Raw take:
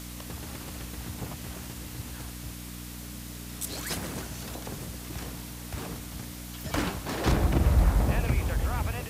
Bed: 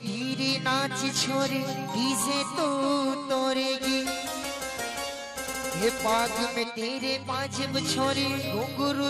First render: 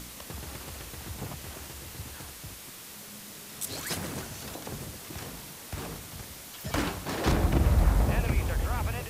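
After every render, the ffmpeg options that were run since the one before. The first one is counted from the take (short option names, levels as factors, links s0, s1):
-af "bandreject=f=60:t=h:w=4,bandreject=f=120:t=h:w=4,bandreject=f=180:t=h:w=4,bandreject=f=240:t=h:w=4,bandreject=f=300:t=h:w=4"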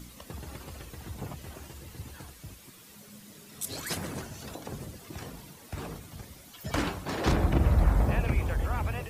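-af "afftdn=nr=10:nf=-45"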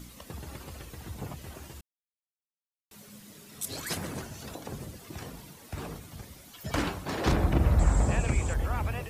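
-filter_complex "[0:a]asettb=1/sr,asplit=3[s0][s1][s2];[s0]atrim=end=7.794[s3];[s1]atrim=start=7.79:end=8.54,asetpts=PTS-STARTPTS,afade=t=in:d=0.004:c=qsin,afade=t=out:st=0.746:d=0.004:c=qsin,lowpass=f=7600:t=q:w=11[s4];[s2]atrim=start=8.536[s5];[s3][s4]acrossfade=d=0.004:c1=hsin:c2=qsin[s6];[s6][s5]acrossfade=d=0.004:c1=qsin:c2=hsin,asplit=3[s7][s8][s9];[s7]atrim=end=1.81,asetpts=PTS-STARTPTS,afade=t=out:st=1.806:d=0.004:c=hsin[s10];[s8]atrim=start=1.81:end=2.91,asetpts=PTS-STARTPTS,volume=0[s11];[s9]atrim=start=2.91,asetpts=PTS-STARTPTS,afade=t=in:d=0.004:c=hsin[s12];[s10][s11][s12]concat=n=3:v=0:a=1"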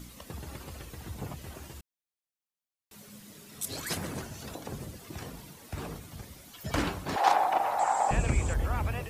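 -filter_complex "[0:a]asettb=1/sr,asplit=3[s0][s1][s2];[s0]atrim=end=7.164[s3];[s1]atrim=start=7.16:end=8.11,asetpts=PTS-STARTPTS,afade=t=in:d=0.004:c=qsin,afade=t=out:st=0.946:d=0.004:c=qsin,highpass=f=800:t=q:w=7.2[s4];[s2]atrim=start=8.106[s5];[s3][s4]acrossfade=d=0.004:c1=hsin:c2=qsin[s6];[s6][s5]acrossfade=d=0.004:c1=qsin:c2=hsin"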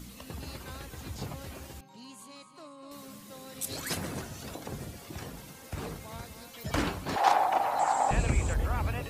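-filter_complex "[1:a]volume=0.0794[s0];[0:a][s0]amix=inputs=2:normalize=0"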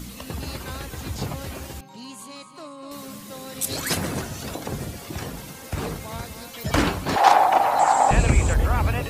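-af "volume=2.82,alimiter=limit=0.891:level=0:latency=1"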